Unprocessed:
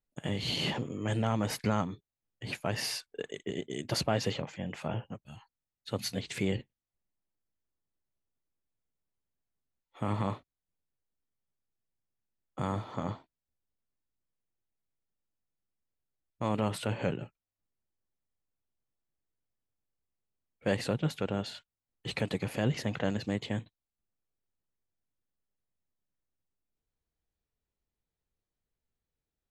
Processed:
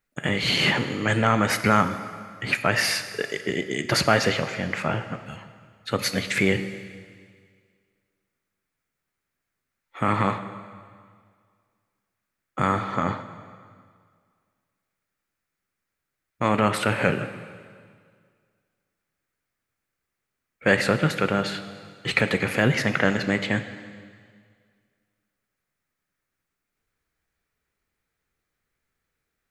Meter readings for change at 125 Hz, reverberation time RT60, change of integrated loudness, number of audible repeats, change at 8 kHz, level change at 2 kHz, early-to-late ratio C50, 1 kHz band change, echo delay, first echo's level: +6.5 dB, 2.0 s, +10.5 dB, no echo, +9.5 dB, +17.0 dB, 11.0 dB, +13.0 dB, no echo, no echo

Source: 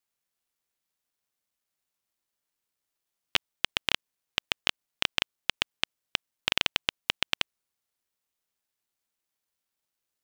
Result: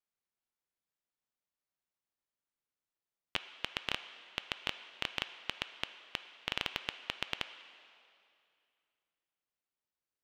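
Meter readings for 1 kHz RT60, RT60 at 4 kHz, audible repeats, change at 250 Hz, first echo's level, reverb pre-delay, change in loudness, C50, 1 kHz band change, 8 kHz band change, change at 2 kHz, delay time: 2.5 s, 2.2 s, no echo, -6.0 dB, no echo, 7 ms, -10.0 dB, 11.0 dB, -6.5 dB, -13.5 dB, -9.0 dB, no echo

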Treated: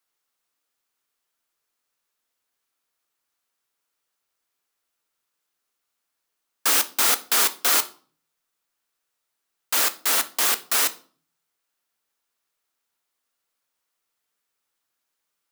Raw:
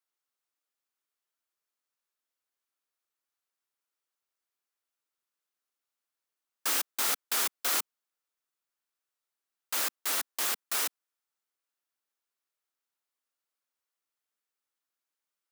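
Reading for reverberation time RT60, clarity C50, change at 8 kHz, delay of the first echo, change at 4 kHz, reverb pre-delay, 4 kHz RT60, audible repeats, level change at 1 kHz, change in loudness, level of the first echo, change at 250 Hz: 0.45 s, 18.0 dB, +9.5 dB, no echo, +9.5 dB, 4 ms, 0.35 s, no echo, +9.5 dB, +9.5 dB, no echo, +9.5 dB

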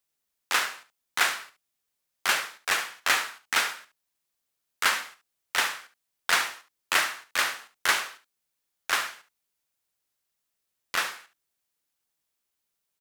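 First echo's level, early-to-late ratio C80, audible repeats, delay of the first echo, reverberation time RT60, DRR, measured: -13.0 dB, no reverb, 1, 71 ms, no reverb, no reverb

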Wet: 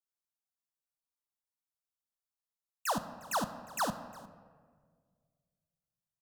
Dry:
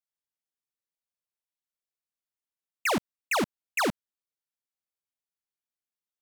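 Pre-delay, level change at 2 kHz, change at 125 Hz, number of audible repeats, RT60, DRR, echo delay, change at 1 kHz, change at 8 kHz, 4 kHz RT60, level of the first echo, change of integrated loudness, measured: 3 ms, -11.0 dB, -4.5 dB, 1, 1.7 s, 9.5 dB, 355 ms, -2.5 dB, -3.5 dB, 0.90 s, -21.5 dB, -6.5 dB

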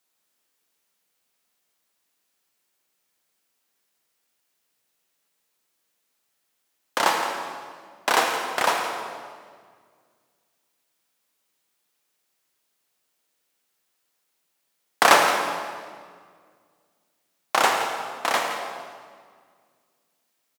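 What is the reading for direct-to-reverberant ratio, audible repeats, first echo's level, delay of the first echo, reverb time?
2.5 dB, 1, -12.0 dB, 169 ms, 1.9 s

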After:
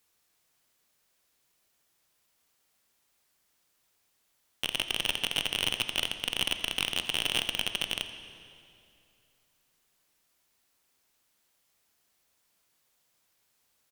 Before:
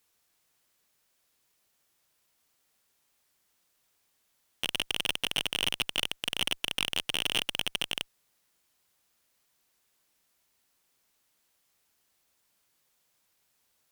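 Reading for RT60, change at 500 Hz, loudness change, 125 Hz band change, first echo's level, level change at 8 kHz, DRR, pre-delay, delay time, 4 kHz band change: 2.6 s, +0.5 dB, +0.5 dB, +0.5 dB, -17.0 dB, +0.5 dB, 8.5 dB, 16 ms, 84 ms, +0.5 dB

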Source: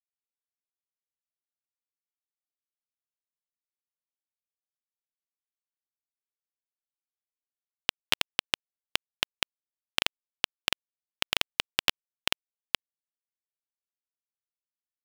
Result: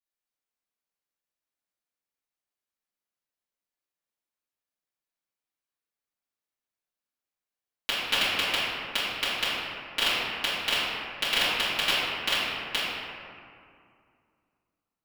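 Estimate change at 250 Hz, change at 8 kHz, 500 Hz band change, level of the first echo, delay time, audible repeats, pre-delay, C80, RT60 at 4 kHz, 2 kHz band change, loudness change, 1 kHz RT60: +6.0 dB, +1.5 dB, +7.0 dB, no echo, no echo, no echo, 3 ms, -1.0 dB, 1.2 s, +5.5 dB, +4.0 dB, 2.3 s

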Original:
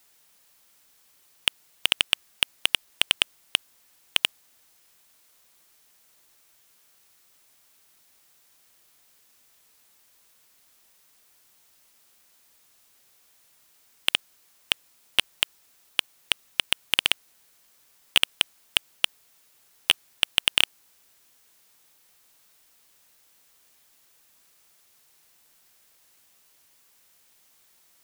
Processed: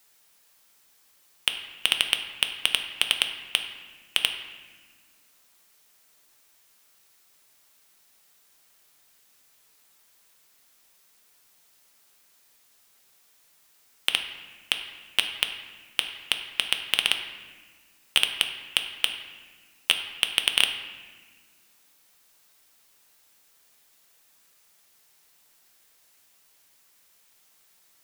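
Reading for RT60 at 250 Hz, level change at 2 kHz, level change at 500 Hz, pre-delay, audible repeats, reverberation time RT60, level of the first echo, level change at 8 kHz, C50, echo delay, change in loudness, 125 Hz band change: 2.4 s, 0.0 dB, -1.0 dB, 4 ms, no echo, 1.5 s, no echo, -0.5 dB, 7.5 dB, no echo, -0.5 dB, no reading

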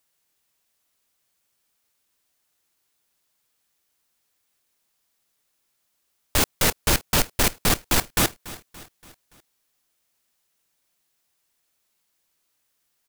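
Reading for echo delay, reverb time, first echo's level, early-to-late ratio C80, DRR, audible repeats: 286 ms, no reverb, -18.0 dB, no reverb, no reverb, 3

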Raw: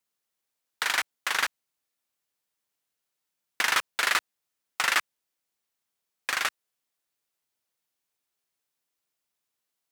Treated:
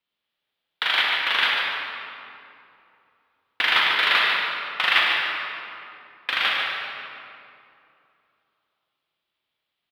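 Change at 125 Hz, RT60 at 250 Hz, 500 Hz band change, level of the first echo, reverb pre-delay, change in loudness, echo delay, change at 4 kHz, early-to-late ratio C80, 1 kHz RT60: no reading, 3.1 s, +6.5 dB, -6.5 dB, 22 ms, +6.0 dB, 145 ms, +10.0 dB, -1.0 dB, 2.6 s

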